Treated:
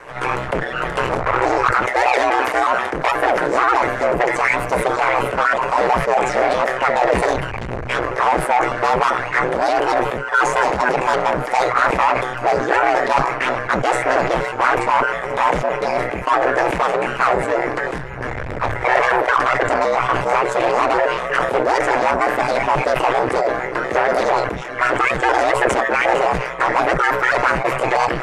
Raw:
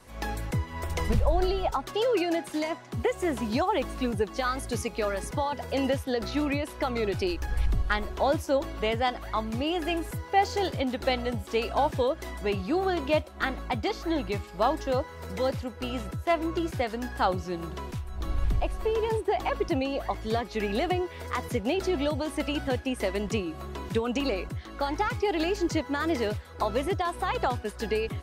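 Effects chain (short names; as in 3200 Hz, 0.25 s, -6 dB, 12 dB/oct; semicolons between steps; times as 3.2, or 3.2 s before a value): trilling pitch shifter +3.5 st, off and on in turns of 0.121 s; overloaded stage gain 31 dB; formant shift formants +6 st; LPF 10000 Hz 24 dB/oct; band shelf 980 Hz +14.5 dB 3 oct; ring modulator 63 Hz; sustainer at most 53 dB/s; gain +6.5 dB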